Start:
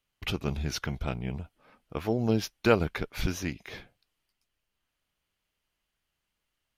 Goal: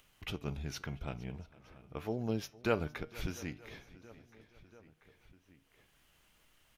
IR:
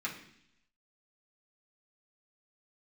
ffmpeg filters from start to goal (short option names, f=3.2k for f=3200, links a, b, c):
-filter_complex "[0:a]equalizer=f=4.5k:w=3.9:g=-3.5,asplit=2[a][b];[b]adelay=687,lowpass=f=4.7k:p=1,volume=-23dB,asplit=2[c][d];[d]adelay=687,lowpass=f=4.7k:p=1,volume=0.5,asplit=2[e][f];[f]adelay=687,lowpass=f=4.7k:p=1,volume=0.5[g];[c][e][g]amix=inputs=3:normalize=0[h];[a][h]amix=inputs=2:normalize=0,flanger=delay=6.3:depth=1:regen=88:speed=0.62:shape=sinusoidal,acompressor=mode=upward:threshold=-45dB:ratio=2.5,asplit=2[i][j];[j]aecho=0:1:461|922|1383|1844:0.0794|0.0421|0.0223|0.0118[k];[i][k]amix=inputs=2:normalize=0,volume=-4dB"